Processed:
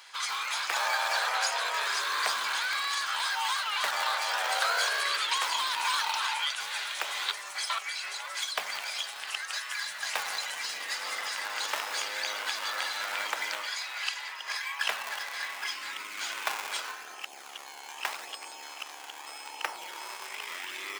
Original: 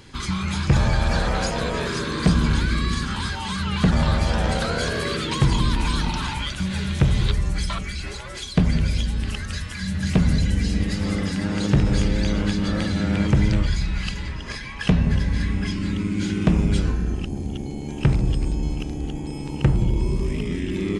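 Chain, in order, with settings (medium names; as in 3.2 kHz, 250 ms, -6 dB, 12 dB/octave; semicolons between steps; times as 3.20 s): in parallel at -8 dB: decimation with a swept rate 40×, swing 160% 0.8 Hz; on the sum: high-pass 820 Hz 24 dB/octave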